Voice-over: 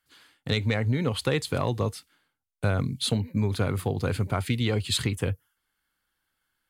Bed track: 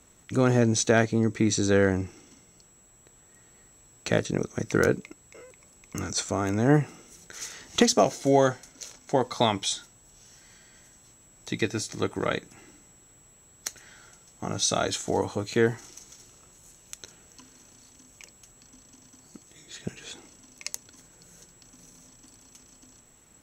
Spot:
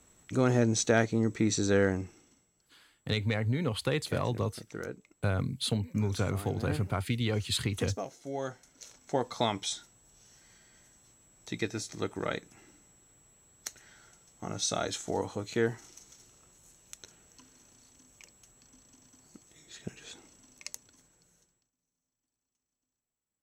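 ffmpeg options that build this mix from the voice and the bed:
-filter_complex "[0:a]adelay=2600,volume=-4.5dB[a];[1:a]volume=7dB,afade=t=out:st=1.82:d=0.69:silence=0.223872,afade=t=in:st=8.33:d=0.78:silence=0.281838,afade=t=out:st=20.54:d=1.17:silence=0.0354813[b];[a][b]amix=inputs=2:normalize=0"

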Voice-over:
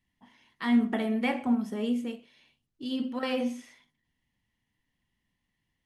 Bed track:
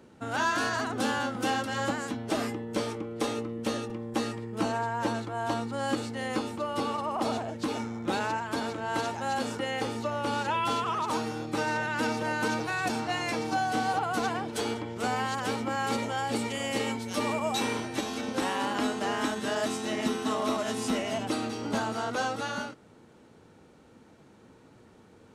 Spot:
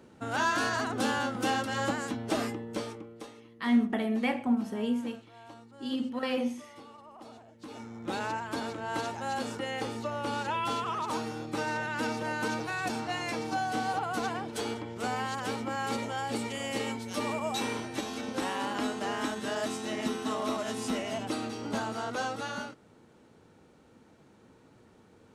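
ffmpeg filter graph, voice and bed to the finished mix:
-filter_complex "[0:a]adelay=3000,volume=-1dB[a];[1:a]volume=16dB,afade=t=out:st=2.38:d=0.94:silence=0.112202,afade=t=in:st=7.56:d=0.71:silence=0.149624[b];[a][b]amix=inputs=2:normalize=0"

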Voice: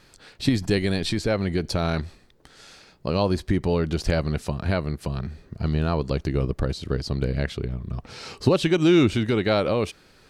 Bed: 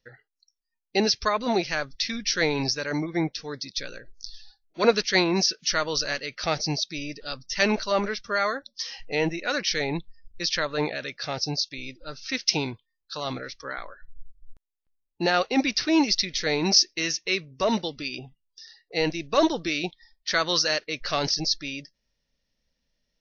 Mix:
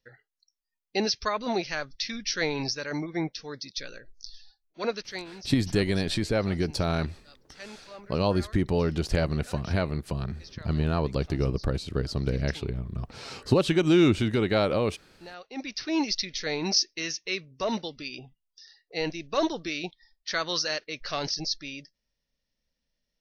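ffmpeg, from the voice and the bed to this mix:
-filter_complex "[0:a]adelay=5050,volume=-2.5dB[a];[1:a]volume=12.5dB,afade=t=out:st=4.34:d=0.98:silence=0.133352,afade=t=in:st=15.43:d=0.6:silence=0.149624[b];[a][b]amix=inputs=2:normalize=0"

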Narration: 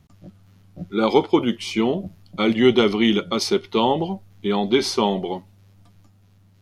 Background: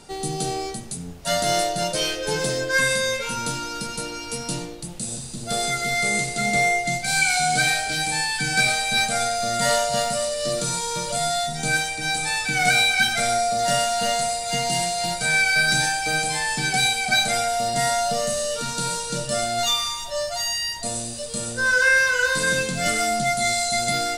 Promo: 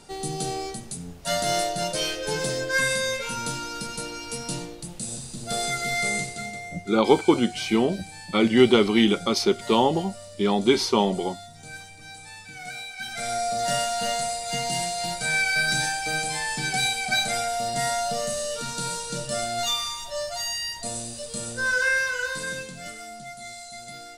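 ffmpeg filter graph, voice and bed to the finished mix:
-filter_complex "[0:a]adelay=5950,volume=-1dB[a];[1:a]volume=11.5dB,afade=t=out:st=6.07:d=0.53:silence=0.16788,afade=t=in:st=12.97:d=0.52:silence=0.188365,afade=t=out:st=21.65:d=1.31:silence=0.211349[b];[a][b]amix=inputs=2:normalize=0"

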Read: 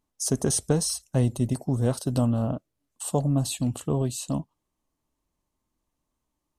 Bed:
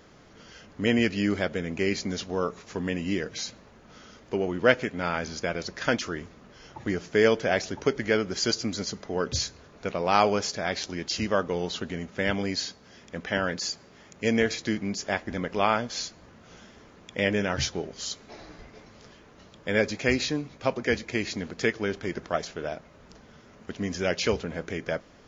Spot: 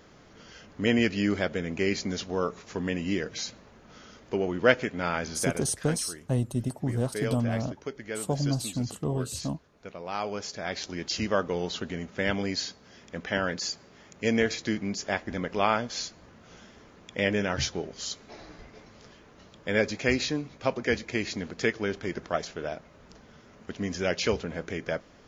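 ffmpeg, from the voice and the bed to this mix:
-filter_complex "[0:a]adelay=5150,volume=-4dB[a];[1:a]volume=10dB,afade=t=out:st=5.45:d=0.23:silence=0.281838,afade=t=in:st=10.2:d=0.85:silence=0.298538[b];[a][b]amix=inputs=2:normalize=0"

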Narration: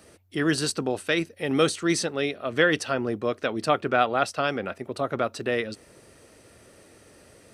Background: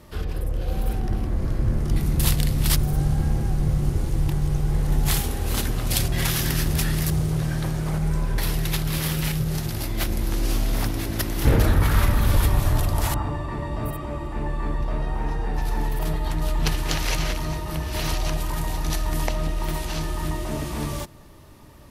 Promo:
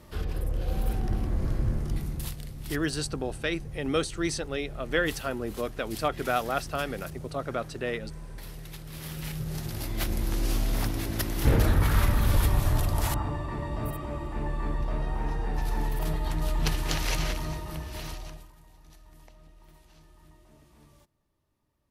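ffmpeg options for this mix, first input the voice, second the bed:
-filter_complex "[0:a]adelay=2350,volume=-5.5dB[a];[1:a]volume=10.5dB,afade=t=out:st=1.51:d=0.84:silence=0.188365,afade=t=in:st=8.86:d=1.27:silence=0.199526,afade=t=out:st=17.25:d=1.27:silence=0.0562341[b];[a][b]amix=inputs=2:normalize=0"

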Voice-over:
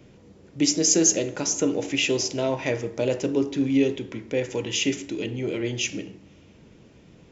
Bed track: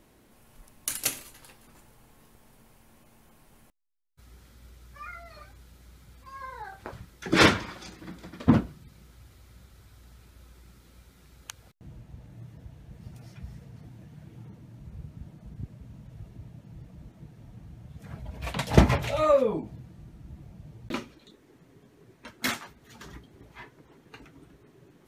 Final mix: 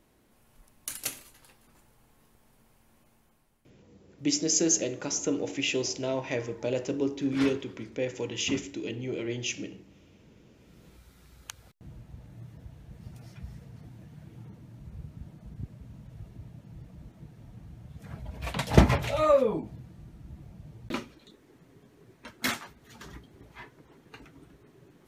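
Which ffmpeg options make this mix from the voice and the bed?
-filter_complex "[0:a]adelay=3650,volume=-5.5dB[a];[1:a]volume=12dB,afade=t=out:st=3.06:d=0.62:silence=0.237137,afade=t=in:st=10.53:d=0.54:silence=0.133352[b];[a][b]amix=inputs=2:normalize=0"

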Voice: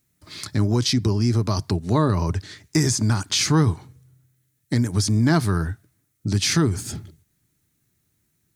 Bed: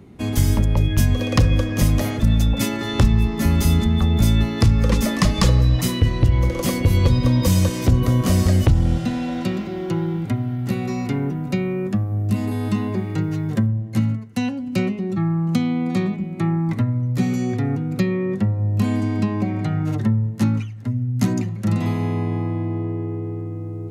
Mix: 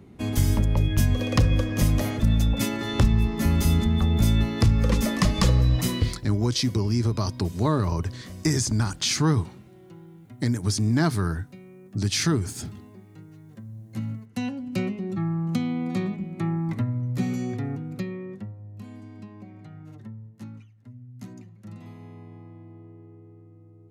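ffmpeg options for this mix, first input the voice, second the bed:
-filter_complex "[0:a]adelay=5700,volume=-3.5dB[a];[1:a]volume=13.5dB,afade=t=out:st=5.96:d=0.25:silence=0.105925,afade=t=in:st=13.62:d=0.86:silence=0.133352,afade=t=out:st=17.31:d=1.32:silence=0.16788[b];[a][b]amix=inputs=2:normalize=0"

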